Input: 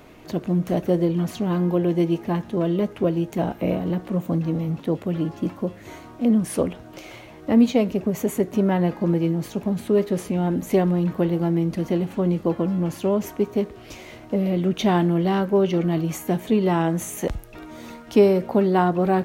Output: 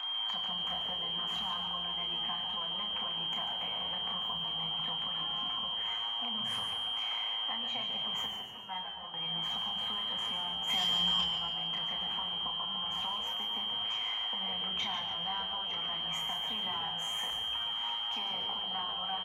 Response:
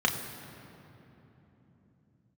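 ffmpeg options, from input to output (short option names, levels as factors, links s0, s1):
-filter_complex "[0:a]acompressor=threshold=0.0708:ratio=4,acrossover=split=480 2400:gain=0.224 1 0.178[s0][s1][s2];[s0][s1][s2]amix=inputs=3:normalize=0,aeval=exprs='val(0)+0.0126*sin(2*PI*3200*n/s)':c=same,lowshelf=f=640:t=q:w=3:g=-13,asettb=1/sr,asplit=3[s3][s4][s5];[s3]atrim=end=8.274[s6];[s4]atrim=start=8.27:end=9.14,asetpts=PTS-STARTPTS,afade=t=in:d=0.004:c=qsin,afade=t=out:st=0.866:d=0.004:c=qsin,agate=range=0.0224:threshold=0.0398:ratio=3:detection=peak[s7];[s5]atrim=start=9.136[s8];[s6][s7]acrossfade=d=0.004:c1=hsin:c2=qsin[s9];[s9][s8]acrossfade=d=0.004:c1=qsin:c2=hsin,asplit=3[s10][s11][s12];[s10]afade=t=out:st=10.67:d=0.02[s13];[s11]aeval=exprs='0.0668*sin(PI/2*1.78*val(0)/0.0668)':c=same,afade=t=in:st=10.67:d=0.02,afade=t=out:st=11.2:d=0.02[s14];[s12]afade=t=in:st=11.2:d=0.02[s15];[s13][s14][s15]amix=inputs=3:normalize=0,acrossover=split=150|3000[s16][s17][s18];[s17]acompressor=threshold=0.00501:ratio=6[s19];[s16][s19][s18]amix=inputs=3:normalize=0,asplit=6[s20][s21][s22][s23][s24][s25];[s21]adelay=144,afreqshift=-110,volume=0.422[s26];[s22]adelay=288,afreqshift=-220,volume=0.197[s27];[s23]adelay=432,afreqshift=-330,volume=0.0933[s28];[s24]adelay=576,afreqshift=-440,volume=0.0437[s29];[s25]adelay=720,afreqshift=-550,volume=0.0207[s30];[s20][s26][s27][s28][s29][s30]amix=inputs=6:normalize=0[s31];[1:a]atrim=start_sample=2205,afade=t=out:st=0.33:d=0.01,atrim=end_sample=14994[s32];[s31][s32]afir=irnorm=-1:irlink=0,volume=0.473"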